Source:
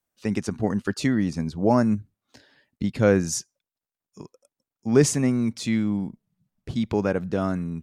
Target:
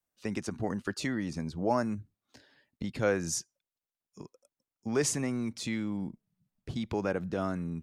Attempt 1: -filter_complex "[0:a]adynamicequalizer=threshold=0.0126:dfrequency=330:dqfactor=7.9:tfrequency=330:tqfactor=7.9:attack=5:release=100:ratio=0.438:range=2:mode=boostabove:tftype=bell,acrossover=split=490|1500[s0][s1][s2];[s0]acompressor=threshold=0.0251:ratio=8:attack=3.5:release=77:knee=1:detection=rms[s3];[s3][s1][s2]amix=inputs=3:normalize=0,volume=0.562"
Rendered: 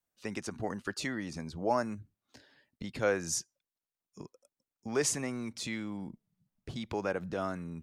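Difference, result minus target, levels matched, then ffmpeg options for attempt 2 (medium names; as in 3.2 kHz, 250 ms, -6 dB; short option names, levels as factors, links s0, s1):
compression: peak gain reduction +6 dB
-filter_complex "[0:a]adynamicequalizer=threshold=0.0126:dfrequency=330:dqfactor=7.9:tfrequency=330:tqfactor=7.9:attack=5:release=100:ratio=0.438:range=2:mode=boostabove:tftype=bell,acrossover=split=490|1500[s0][s1][s2];[s0]acompressor=threshold=0.0562:ratio=8:attack=3.5:release=77:knee=1:detection=rms[s3];[s3][s1][s2]amix=inputs=3:normalize=0,volume=0.562"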